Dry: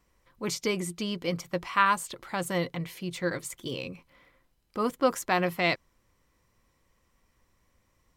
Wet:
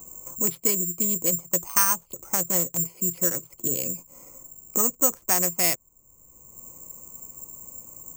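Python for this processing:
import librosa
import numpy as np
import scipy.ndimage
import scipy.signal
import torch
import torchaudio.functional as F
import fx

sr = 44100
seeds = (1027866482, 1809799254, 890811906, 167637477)

y = fx.wiener(x, sr, points=25)
y = (np.kron(scipy.signal.resample_poly(y, 1, 6), np.eye(6)[0]) * 6)[:len(y)]
y = fx.band_squash(y, sr, depth_pct=70)
y = y * 10.0 ** (-1.5 / 20.0)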